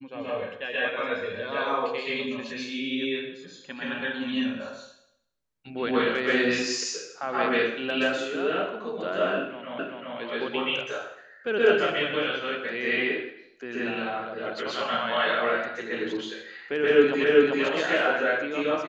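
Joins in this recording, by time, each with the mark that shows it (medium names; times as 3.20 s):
9.79 s: repeat of the last 0.39 s
17.24 s: repeat of the last 0.39 s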